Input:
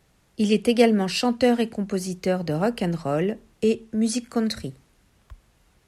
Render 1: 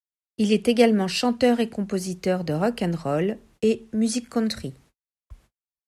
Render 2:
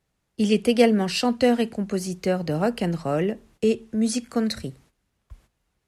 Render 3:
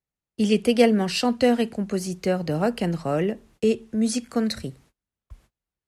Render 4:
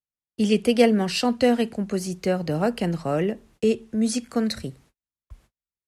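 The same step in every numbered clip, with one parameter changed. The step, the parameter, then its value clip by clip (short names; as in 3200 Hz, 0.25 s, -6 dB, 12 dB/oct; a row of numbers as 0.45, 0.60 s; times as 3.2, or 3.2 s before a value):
gate, range: -56, -13, -30, -43 dB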